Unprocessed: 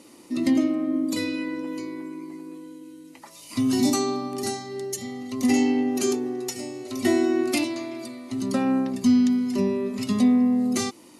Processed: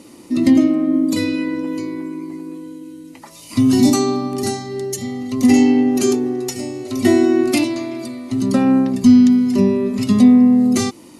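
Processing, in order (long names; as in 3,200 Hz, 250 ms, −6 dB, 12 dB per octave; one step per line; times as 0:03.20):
low-shelf EQ 220 Hz +9.5 dB
level +5 dB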